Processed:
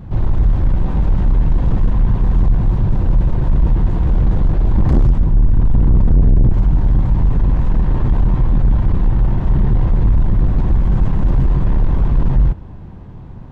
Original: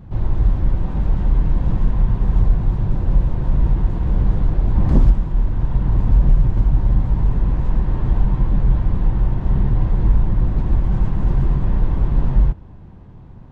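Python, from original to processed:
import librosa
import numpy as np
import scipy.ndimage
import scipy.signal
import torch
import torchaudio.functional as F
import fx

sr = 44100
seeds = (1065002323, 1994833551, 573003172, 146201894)

y = fx.tilt_eq(x, sr, slope=-1.5, at=(5.19, 6.53))
y = 10.0 ** (-13.5 / 20.0) * np.tanh(y / 10.0 ** (-13.5 / 20.0))
y = y * librosa.db_to_amplitude(6.5)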